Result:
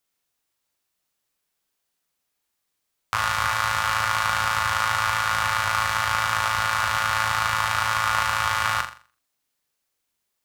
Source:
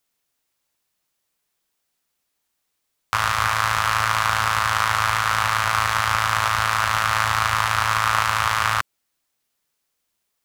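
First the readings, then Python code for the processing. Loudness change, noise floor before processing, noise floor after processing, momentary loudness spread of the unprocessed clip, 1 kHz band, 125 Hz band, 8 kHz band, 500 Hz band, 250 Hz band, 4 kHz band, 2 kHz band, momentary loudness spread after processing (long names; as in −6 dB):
−2.5 dB, −76 dBFS, −78 dBFS, 1 LU, −2.5 dB, −5.5 dB, −2.5 dB, −3.0 dB, −3.0 dB, −2.0 dB, −2.0 dB, 1 LU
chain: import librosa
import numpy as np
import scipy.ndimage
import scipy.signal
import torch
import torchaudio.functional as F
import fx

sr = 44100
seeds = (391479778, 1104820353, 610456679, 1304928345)

y = fx.room_flutter(x, sr, wall_m=7.2, rt60_s=0.39)
y = F.gain(torch.from_numpy(y), -3.5).numpy()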